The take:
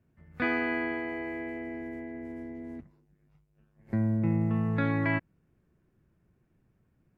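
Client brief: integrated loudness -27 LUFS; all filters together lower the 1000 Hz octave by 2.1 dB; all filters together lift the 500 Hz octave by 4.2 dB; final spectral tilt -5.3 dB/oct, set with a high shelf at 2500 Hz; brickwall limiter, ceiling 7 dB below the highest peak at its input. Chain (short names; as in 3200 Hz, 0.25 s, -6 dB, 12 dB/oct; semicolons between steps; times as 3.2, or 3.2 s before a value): bell 500 Hz +7 dB; bell 1000 Hz -6 dB; high shelf 2500 Hz +4 dB; gain +5 dB; limiter -16 dBFS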